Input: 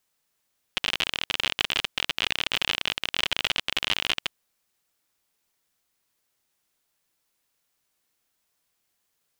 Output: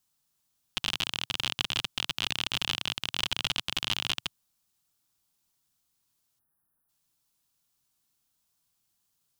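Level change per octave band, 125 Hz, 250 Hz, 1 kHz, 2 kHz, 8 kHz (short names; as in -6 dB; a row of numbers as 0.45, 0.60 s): +3.0, -1.0, -4.5, -6.5, -0.5 dB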